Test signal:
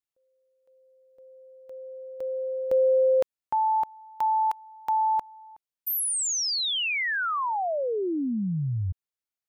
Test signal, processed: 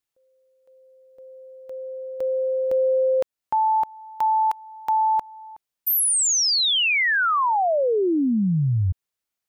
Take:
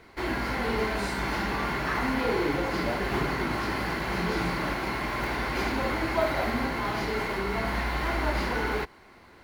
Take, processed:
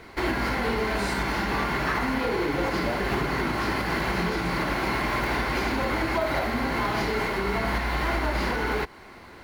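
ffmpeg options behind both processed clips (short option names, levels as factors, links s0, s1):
-af "alimiter=limit=0.0668:level=0:latency=1:release=259,volume=2.24"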